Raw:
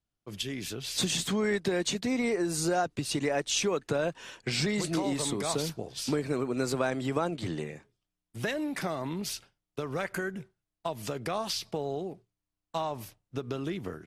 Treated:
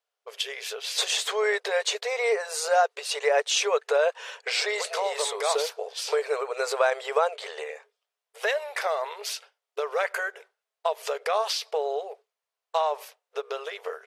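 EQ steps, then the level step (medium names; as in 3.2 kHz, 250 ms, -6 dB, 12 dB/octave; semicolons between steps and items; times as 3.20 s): brick-wall FIR high-pass 410 Hz; treble shelf 5.2 kHz -8.5 dB; +8.0 dB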